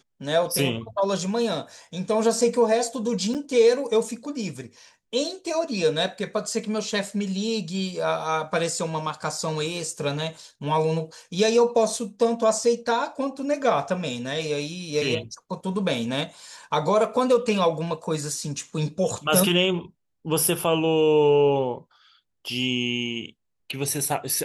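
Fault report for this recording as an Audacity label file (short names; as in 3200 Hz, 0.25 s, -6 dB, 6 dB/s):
3.340000	3.350000	gap 7.4 ms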